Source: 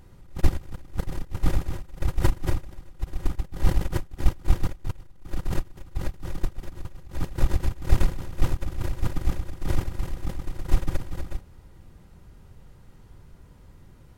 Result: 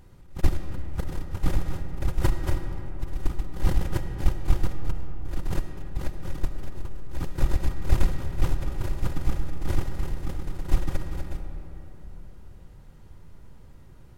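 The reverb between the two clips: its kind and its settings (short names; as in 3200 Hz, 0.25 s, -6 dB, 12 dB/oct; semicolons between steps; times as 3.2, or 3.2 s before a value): digital reverb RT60 4 s, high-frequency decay 0.4×, pre-delay 25 ms, DRR 6.5 dB; gain -1.5 dB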